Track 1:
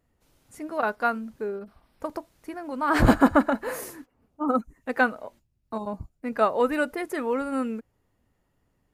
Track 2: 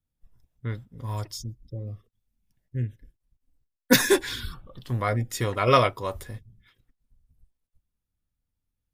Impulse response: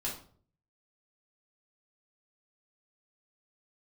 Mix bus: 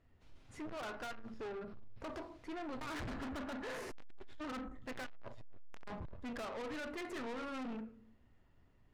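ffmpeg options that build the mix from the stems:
-filter_complex "[0:a]highshelf=f=2.1k:g=8,acompressor=threshold=-26dB:ratio=10,volume=-4.5dB,asplit=3[a][b][c];[b]volume=-7dB[d];[1:a]aeval=exprs='max(val(0),0)':c=same,volume=-6.5dB,asplit=2[e][f];[f]volume=-13.5dB[g];[c]apad=whole_len=393964[h];[e][h]sidechaincompress=threshold=-53dB:ratio=12:attack=9:release=402[i];[2:a]atrim=start_sample=2205[j];[d][g]amix=inputs=2:normalize=0[k];[k][j]afir=irnorm=-1:irlink=0[l];[a][i][l]amix=inputs=3:normalize=0,lowpass=3.2k,lowshelf=f=120:g=6.5,aeval=exprs='(tanh(112*val(0)+0.25)-tanh(0.25))/112':c=same"

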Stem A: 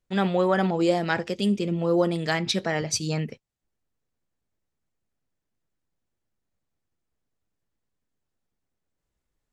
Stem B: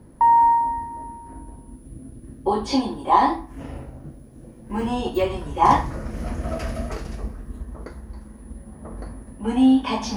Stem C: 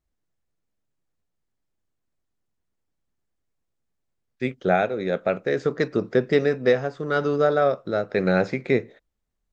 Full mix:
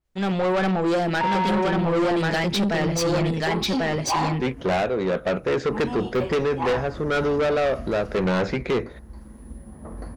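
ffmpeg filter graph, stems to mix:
-filter_complex "[0:a]bandreject=f=116.3:t=h:w=4,bandreject=f=232.6:t=h:w=4,bandreject=f=348.9:t=h:w=4,bandreject=f=465.2:t=h:w=4,adelay=50,volume=0dB,asplit=2[a][b];[b]volume=-3dB[c];[1:a]adelay=1000,volume=-11dB[d];[2:a]volume=1.5dB[e];[c]aecho=0:1:1092:1[f];[a][d][e][f]amix=inputs=4:normalize=0,dynaudnorm=f=130:g=5:m=10dB,asoftclip=type=tanh:threshold=-18.5dB,adynamicequalizer=threshold=0.00562:dfrequency=5800:dqfactor=0.7:tfrequency=5800:tqfactor=0.7:attack=5:release=100:ratio=0.375:range=3.5:mode=cutabove:tftype=highshelf"

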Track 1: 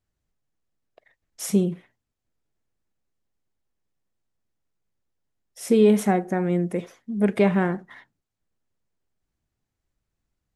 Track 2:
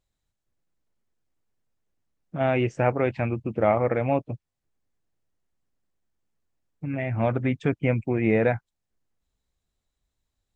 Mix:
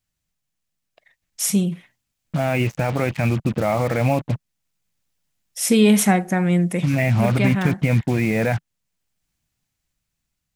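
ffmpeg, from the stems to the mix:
-filter_complex "[0:a]highshelf=f=2.4k:g=11.5,volume=-2.5dB[a];[1:a]alimiter=limit=-18dB:level=0:latency=1:release=39,acrusher=bits=6:mix=0:aa=0.5,volume=3dB,asplit=2[b][c];[c]apad=whole_len=465289[d];[a][d]sidechaincompress=threshold=-25dB:ratio=8:attack=12:release=1340[e];[e][b]amix=inputs=2:normalize=0,equalizer=f=160:t=o:w=0.67:g=5,equalizer=f=400:t=o:w=0.67:g=-6,equalizer=f=2.5k:t=o:w=0.67:g=3,dynaudnorm=f=550:g=7:m=6dB"

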